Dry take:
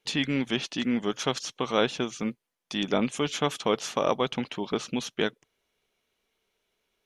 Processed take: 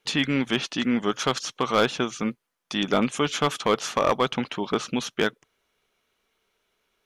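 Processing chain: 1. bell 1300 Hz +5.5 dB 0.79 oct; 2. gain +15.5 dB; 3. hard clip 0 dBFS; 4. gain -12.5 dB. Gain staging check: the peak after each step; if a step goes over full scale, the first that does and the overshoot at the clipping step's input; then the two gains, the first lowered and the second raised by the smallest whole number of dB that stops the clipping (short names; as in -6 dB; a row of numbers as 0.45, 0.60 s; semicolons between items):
-8.0, +7.5, 0.0, -12.5 dBFS; step 2, 7.5 dB; step 2 +7.5 dB, step 4 -4.5 dB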